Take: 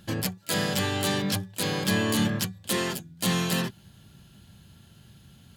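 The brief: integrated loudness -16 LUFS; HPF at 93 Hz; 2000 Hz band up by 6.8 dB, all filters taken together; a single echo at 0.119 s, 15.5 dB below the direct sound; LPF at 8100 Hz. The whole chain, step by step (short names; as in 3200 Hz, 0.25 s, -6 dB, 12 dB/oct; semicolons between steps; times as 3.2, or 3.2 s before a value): HPF 93 Hz; LPF 8100 Hz; bell 2000 Hz +8.5 dB; echo 0.119 s -15.5 dB; gain +9.5 dB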